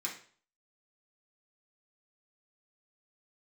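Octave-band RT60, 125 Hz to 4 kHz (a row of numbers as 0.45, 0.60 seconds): 0.50, 0.45, 0.45, 0.45, 0.45, 0.45 seconds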